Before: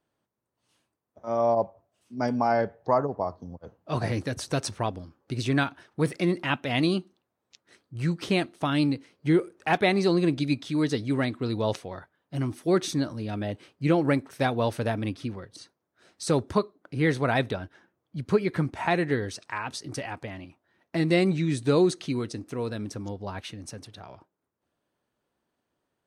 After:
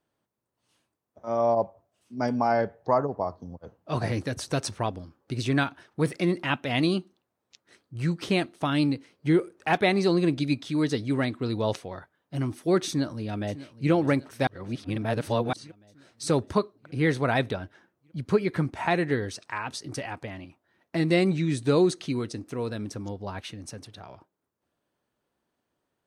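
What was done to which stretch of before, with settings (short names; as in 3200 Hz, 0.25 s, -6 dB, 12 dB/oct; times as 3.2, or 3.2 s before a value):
12.87–13.91 echo throw 0.6 s, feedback 65%, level -16 dB
14.47–15.53 reverse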